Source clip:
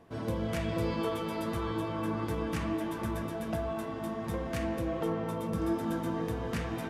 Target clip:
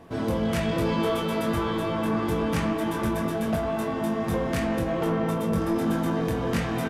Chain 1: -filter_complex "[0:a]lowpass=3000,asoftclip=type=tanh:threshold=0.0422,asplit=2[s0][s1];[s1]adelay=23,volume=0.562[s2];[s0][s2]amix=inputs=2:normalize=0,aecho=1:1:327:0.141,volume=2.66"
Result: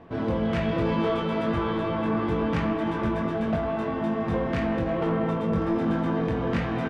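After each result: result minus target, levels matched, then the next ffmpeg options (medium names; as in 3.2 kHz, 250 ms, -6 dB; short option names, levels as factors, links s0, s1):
echo-to-direct +11 dB; 4 kHz band -4.0 dB
-filter_complex "[0:a]lowpass=3000,asoftclip=type=tanh:threshold=0.0422,asplit=2[s0][s1];[s1]adelay=23,volume=0.562[s2];[s0][s2]amix=inputs=2:normalize=0,aecho=1:1:327:0.0398,volume=2.66"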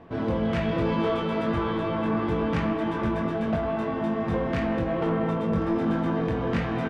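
4 kHz band -4.0 dB
-filter_complex "[0:a]asoftclip=type=tanh:threshold=0.0422,asplit=2[s0][s1];[s1]adelay=23,volume=0.562[s2];[s0][s2]amix=inputs=2:normalize=0,aecho=1:1:327:0.0398,volume=2.66"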